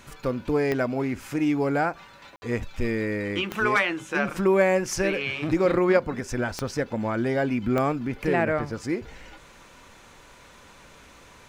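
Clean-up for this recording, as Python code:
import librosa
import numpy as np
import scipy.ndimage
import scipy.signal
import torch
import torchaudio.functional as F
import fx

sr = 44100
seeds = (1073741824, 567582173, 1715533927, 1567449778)

y = fx.fix_declick_ar(x, sr, threshold=10.0)
y = fx.fix_ambience(y, sr, seeds[0], print_start_s=9.94, print_end_s=10.44, start_s=2.36, end_s=2.42)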